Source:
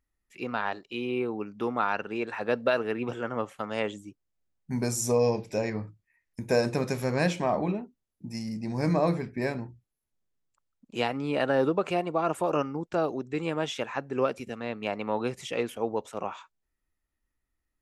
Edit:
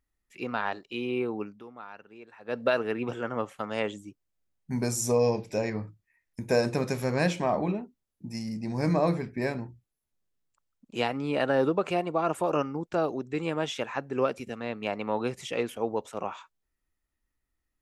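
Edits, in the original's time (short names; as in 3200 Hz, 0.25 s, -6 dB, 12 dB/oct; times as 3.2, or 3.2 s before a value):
1.45–2.62 dip -17 dB, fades 0.18 s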